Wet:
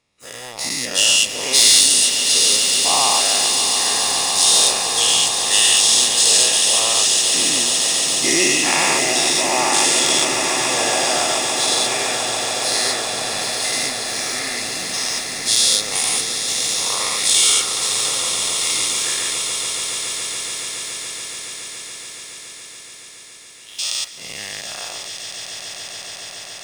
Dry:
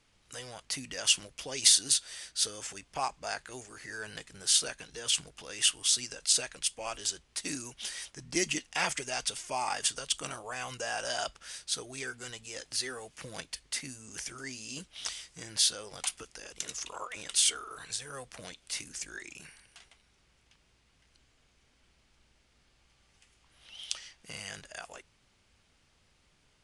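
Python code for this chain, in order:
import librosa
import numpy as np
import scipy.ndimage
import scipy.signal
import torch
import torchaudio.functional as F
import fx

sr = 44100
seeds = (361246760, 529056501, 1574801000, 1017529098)

y = fx.spec_dilate(x, sr, span_ms=240)
y = fx.notch_comb(y, sr, f0_hz=1500.0)
y = fx.leveller(y, sr, passes=2)
y = fx.echo_swell(y, sr, ms=141, loudest=8, wet_db=-11.5)
y = y * librosa.db_to_amplitude(-1.0)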